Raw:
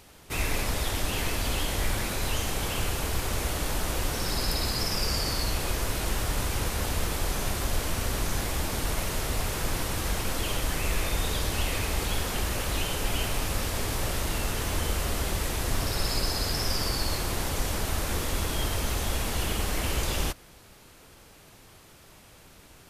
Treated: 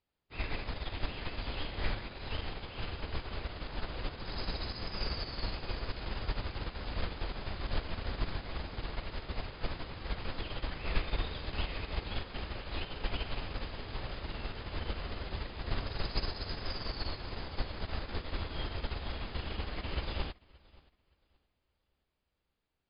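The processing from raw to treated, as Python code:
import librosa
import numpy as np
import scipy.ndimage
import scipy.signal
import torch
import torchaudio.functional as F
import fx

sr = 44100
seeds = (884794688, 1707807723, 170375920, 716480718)

y = fx.brickwall_lowpass(x, sr, high_hz=5100.0)
y = fx.echo_feedback(y, sr, ms=573, feedback_pct=55, wet_db=-11.0)
y = fx.upward_expand(y, sr, threshold_db=-43.0, expansion=2.5)
y = y * librosa.db_to_amplitude(-1.5)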